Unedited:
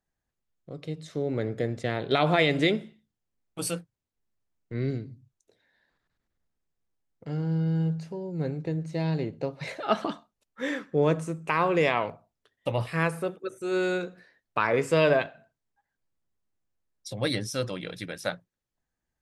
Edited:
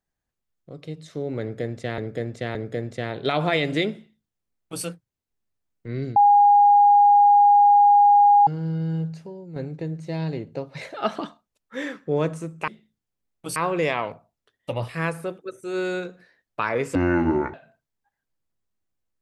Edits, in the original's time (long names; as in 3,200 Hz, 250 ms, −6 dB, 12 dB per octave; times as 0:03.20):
0:01.41–0:01.98: repeat, 3 plays
0:02.81–0:03.69: duplicate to 0:11.54
0:05.02–0:07.33: beep over 818 Hz −11 dBFS
0:08.01–0:08.42: fade out, to −8.5 dB
0:14.93–0:15.26: play speed 56%